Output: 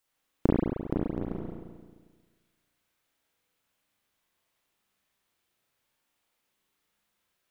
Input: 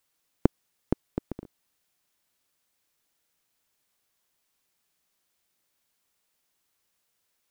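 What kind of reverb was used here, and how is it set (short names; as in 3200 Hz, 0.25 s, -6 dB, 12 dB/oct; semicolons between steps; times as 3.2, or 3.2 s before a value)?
spring tank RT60 1.5 s, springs 34/44 ms, chirp 20 ms, DRR -5.5 dB; gain -4.5 dB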